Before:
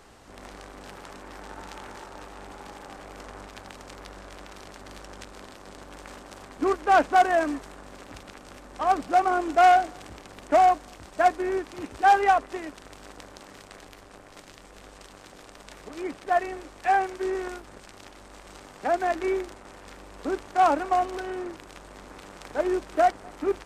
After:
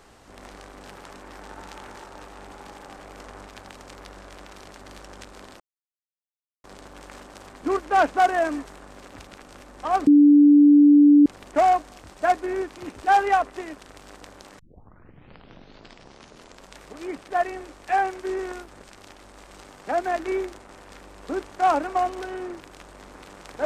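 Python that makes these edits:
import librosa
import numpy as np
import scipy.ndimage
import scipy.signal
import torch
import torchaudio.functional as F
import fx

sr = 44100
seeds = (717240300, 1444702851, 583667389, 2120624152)

y = fx.edit(x, sr, fx.insert_silence(at_s=5.6, length_s=1.04),
    fx.bleep(start_s=9.03, length_s=1.19, hz=291.0, db=-9.5),
    fx.tape_start(start_s=13.55, length_s=2.2), tone=tone)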